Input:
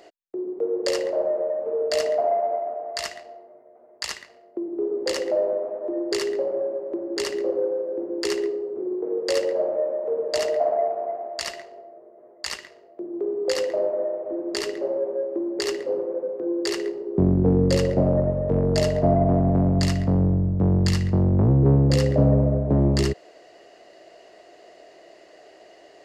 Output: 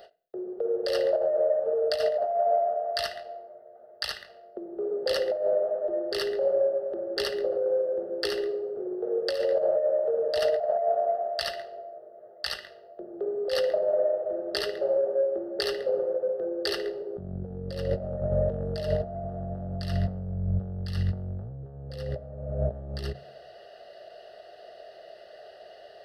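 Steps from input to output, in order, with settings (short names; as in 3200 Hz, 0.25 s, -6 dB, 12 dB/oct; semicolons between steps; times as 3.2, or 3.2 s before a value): negative-ratio compressor -24 dBFS, ratio -0.5; fixed phaser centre 1500 Hz, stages 8; on a send at -14 dB: reverb RT60 0.45 s, pre-delay 3 ms; on the sum: ending taper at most 260 dB/s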